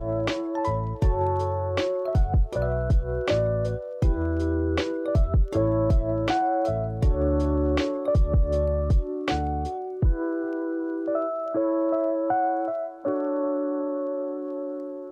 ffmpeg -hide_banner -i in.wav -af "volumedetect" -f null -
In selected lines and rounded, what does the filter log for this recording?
mean_volume: -24.2 dB
max_volume: -14.3 dB